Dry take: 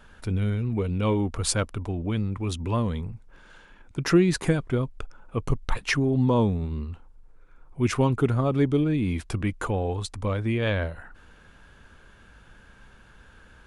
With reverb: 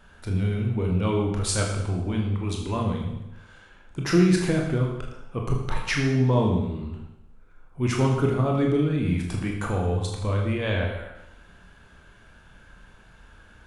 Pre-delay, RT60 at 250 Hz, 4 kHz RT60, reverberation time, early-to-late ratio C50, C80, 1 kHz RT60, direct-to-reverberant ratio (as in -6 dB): 22 ms, 0.90 s, 0.90 s, 0.90 s, 4.0 dB, 6.0 dB, 0.90 s, -0.5 dB